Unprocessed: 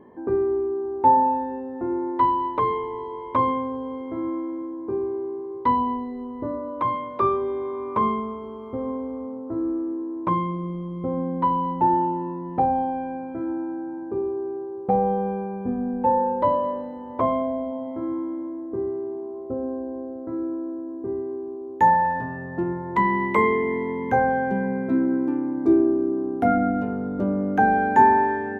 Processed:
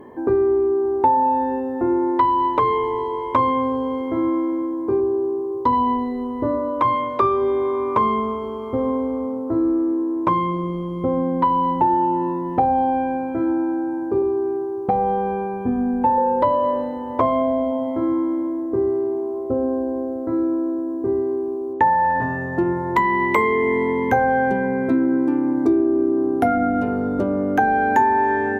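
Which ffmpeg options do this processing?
ffmpeg -i in.wav -filter_complex "[0:a]asettb=1/sr,asplit=3[link_01][link_02][link_03];[link_01]atrim=end=5.004[link_04];[link_02]atrim=start=5:end=5.73,asetpts=PTS-STARTPTS,afade=type=in:duration=0.004:curve=qsin,afade=type=out:start_time=0.726:duration=0.004:curve=qsin,equalizer=frequency=2200:width=1.3:gain=-13.5[link_05];[link_03]atrim=start=5.726[link_06];[link_04][link_05]acrossfade=duration=0.004:curve1=hsin:curve2=qsin[link_07];[link_07][link_06]acrossfade=duration=0.004:curve1=qsin:curve2=hsin,asettb=1/sr,asplit=3[link_08][link_09][link_10];[link_08]atrim=end=14.224[link_11];[link_09]atrim=start=14.22:end=16.18,asetpts=PTS-STARTPTS,afade=type=in:duration=0.004:curve=qsin,afade=type=out:start_time=1.956:duration=0.004:curve=qsin,equalizer=frequency=540:width=4.3:gain=-9[link_12];[link_10]atrim=start=16.176[link_13];[link_11][link_12]acrossfade=duration=0.004:curve1=hsin:curve2=qsin[link_14];[link_14][link_13]acrossfade=duration=0.004:curve1=qsin:curve2=hsin,asettb=1/sr,asplit=3[link_15][link_16][link_17];[link_15]atrim=end=21.734[link_18];[link_16]atrim=start=21.73:end=22.22,asetpts=PTS-STARTPTS,afade=type=in:duration=0.004:curve=qsin,afade=type=out:start_time=0.486:duration=0.004:curve=qsin,lowpass=2400[link_19];[link_17]atrim=start=22.216[link_20];[link_18][link_19]acrossfade=duration=0.004:curve1=hsin:curve2=qsin[link_21];[link_21][link_20]acrossfade=duration=0.004:curve1=qsin:curve2=hsin,aemphasis=mode=production:type=cd,acompressor=threshold=-23dB:ratio=5,equalizer=frequency=190:width_type=o:width=0.28:gain=-9,volume=8.5dB" out.wav

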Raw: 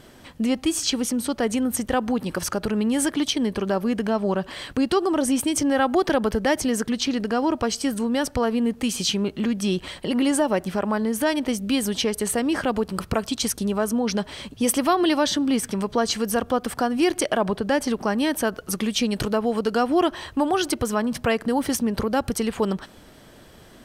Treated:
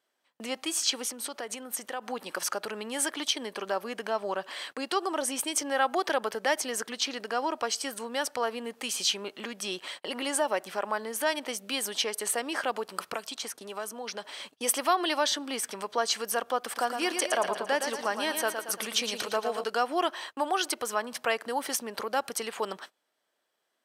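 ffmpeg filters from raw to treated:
ffmpeg -i in.wav -filter_complex "[0:a]asettb=1/sr,asplit=3[link_01][link_02][link_03];[link_01]atrim=end=1.054[link_04];[link_02]atrim=start=1.05:end=2.06,asetpts=PTS-STARTPTS,afade=type=in:duration=0.004:curve=qsin,afade=type=out:start_time=1.006:duration=0.004:curve=qsin,acompressor=threshold=-24dB:ratio=6:attack=3.2:release=140:knee=1:detection=peak[link_05];[link_03]atrim=start=2.056[link_06];[link_04][link_05]acrossfade=duration=0.004:curve1=hsin:curve2=qsin[link_07];[link_07][link_06]acrossfade=duration=0.004:curve1=qsin:curve2=hsin,asettb=1/sr,asplit=3[link_08][link_09][link_10];[link_08]atrim=end=13.154[link_11];[link_09]atrim=start=13.15:end=14.25,asetpts=PTS-STARTPTS,afade=type=in:duration=0.004:curve=qsin,afade=type=out:start_time=1.096:duration=0.004:curve=qsin,acrossover=split=330|2300[link_12][link_13][link_14];[link_12]acompressor=threshold=-30dB:ratio=4[link_15];[link_13]acompressor=threshold=-30dB:ratio=4[link_16];[link_14]acompressor=threshold=-35dB:ratio=4[link_17];[link_15][link_16][link_17]amix=inputs=3:normalize=0[link_18];[link_10]atrim=start=14.246[link_19];[link_11][link_18]acrossfade=duration=0.004:curve1=hsin:curve2=qsin[link_20];[link_20][link_19]acrossfade=duration=0.004:curve1=qsin:curve2=hsin,asettb=1/sr,asplit=3[link_21][link_22][link_23];[link_21]atrim=end=16.604[link_24];[link_22]atrim=start=16.6:end=19.64,asetpts=PTS-STARTPTS,afade=type=in:duration=0.004:curve=qsin,afade=type=out:start_time=3.036:duration=0.004:curve=qsin,aecho=1:1:114|228|342|456|570|684:0.447|0.219|0.107|0.0526|0.0258|0.0126,atrim=end_sample=134064[link_25];[link_23]atrim=start=19.636[link_26];[link_24][link_25]acrossfade=duration=0.004:curve1=hsin:curve2=qsin[link_27];[link_27][link_26]acrossfade=duration=0.004:curve1=qsin:curve2=hsin,agate=range=-24dB:threshold=-37dB:ratio=16:detection=peak,highpass=610,volume=-2.5dB" out.wav

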